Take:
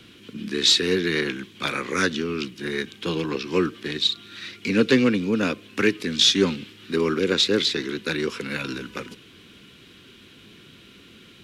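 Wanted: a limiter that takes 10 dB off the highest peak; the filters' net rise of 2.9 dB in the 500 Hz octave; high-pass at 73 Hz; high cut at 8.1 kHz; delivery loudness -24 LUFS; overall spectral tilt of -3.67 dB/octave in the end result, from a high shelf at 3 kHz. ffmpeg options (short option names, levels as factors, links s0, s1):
-af "highpass=73,lowpass=8100,equalizer=f=500:t=o:g=3.5,highshelf=f=3000:g=6,alimiter=limit=0.237:level=0:latency=1"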